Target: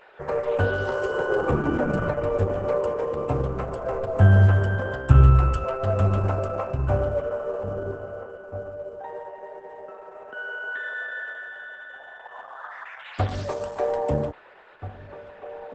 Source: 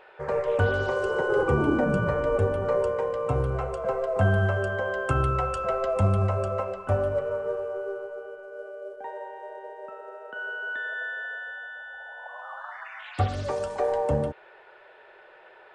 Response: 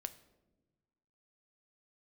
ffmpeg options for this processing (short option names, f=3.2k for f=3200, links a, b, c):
-filter_complex "[0:a]asettb=1/sr,asplit=3[a][b][c];[a]atrim=end=3.574[d];[b]atrim=start=3.57:end=5.64,asetpts=PTS-STARTPTS,afade=t=in:d=0.004:c=qsin,afade=t=out:st=2.066:d=0.004:c=qsin,asubboost=boost=9:cutoff=190[e];[c]atrim=start=5.636[f];[d][e]acrossfade=d=0.004:c1=hsin:c2=qsin[g];[g][f]acrossfade=d=0.004:c1=qsin:c2=hsin,asplit=2[h][i];[i]adelay=1633,volume=-12dB,highshelf=f=4k:g=-36.7[j];[h][j]amix=inputs=2:normalize=0,volume=1dB" -ar 48000 -c:a libopus -b:a 10k